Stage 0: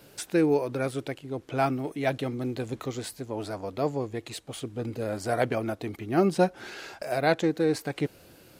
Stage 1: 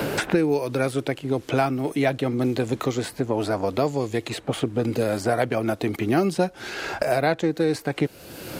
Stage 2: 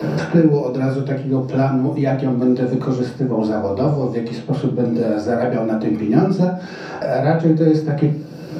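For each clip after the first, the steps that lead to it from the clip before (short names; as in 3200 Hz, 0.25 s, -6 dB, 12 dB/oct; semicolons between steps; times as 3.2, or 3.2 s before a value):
three-band squash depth 100%; gain +4 dB
reverb RT60 0.45 s, pre-delay 3 ms, DRR -7 dB; gain -14.5 dB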